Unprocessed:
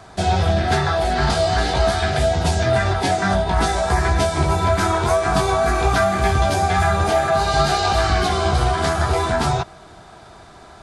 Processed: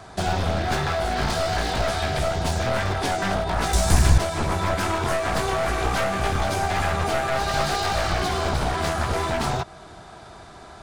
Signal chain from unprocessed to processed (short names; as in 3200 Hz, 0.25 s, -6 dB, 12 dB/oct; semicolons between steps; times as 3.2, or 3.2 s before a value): one-sided fold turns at -18 dBFS; 3.73–4.18 tone controls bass +12 dB, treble +14 dB; in parallel at +0.5 dB: compressor, threshold -26 dBFS, peak gain reduction 19.5 dB; on the sum: gain -6.5 dB